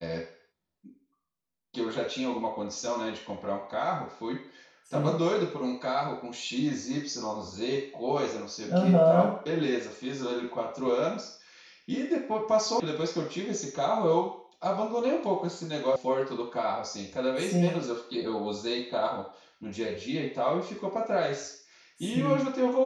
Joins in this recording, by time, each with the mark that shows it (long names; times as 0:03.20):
0:12.80: cut off before it has died away
0:15.96: cut off before it has died away